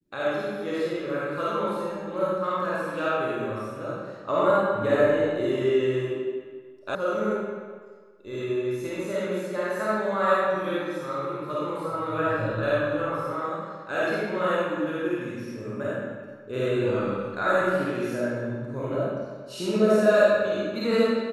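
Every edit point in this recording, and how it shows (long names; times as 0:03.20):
0:06.95: cut off before it has died away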